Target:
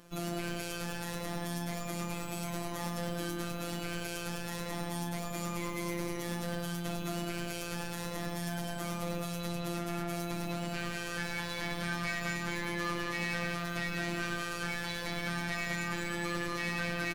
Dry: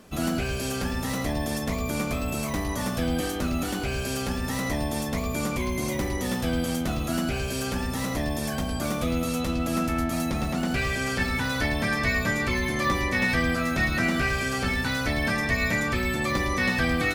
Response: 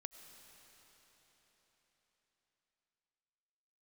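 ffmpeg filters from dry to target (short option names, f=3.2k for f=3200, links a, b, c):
-af "aecho=1:1:203:0.596,asoftclip=type=tanh:threshold=-25dB,afftfilt=real='hypot(re,im)*cos(PI*b)':imag='0':win_size=1024:overlap=0.75,volume=-2.5dB"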